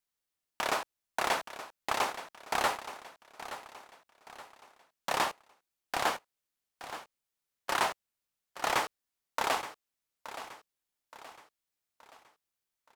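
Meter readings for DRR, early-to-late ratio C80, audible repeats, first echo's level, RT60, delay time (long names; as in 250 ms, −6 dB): no reverb audible, no reverb audible, 4, −13.0 dB, no reverb audible, 873 ms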